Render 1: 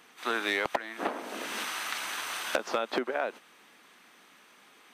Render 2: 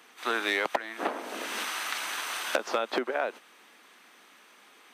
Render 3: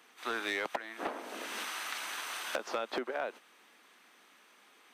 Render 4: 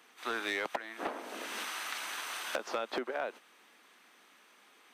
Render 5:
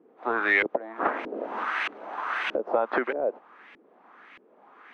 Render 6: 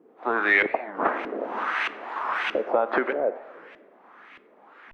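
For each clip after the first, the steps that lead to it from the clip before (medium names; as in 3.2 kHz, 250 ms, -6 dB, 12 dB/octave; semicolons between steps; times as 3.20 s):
high-pass 230 Hz 12 dB/octave; trim +1.5 dB
saturation -17 dBFS, distortion -19 dB; trim -5.5 dB
no audible change
LFO low-pass saw up 1.6 Hz 340–2600 Hz; trim +8 dB
plate-style reverb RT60 1.5 s, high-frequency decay 0.5×, DRR 13 dB; warped record 45 rpm, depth 250 cents; trim +2 dB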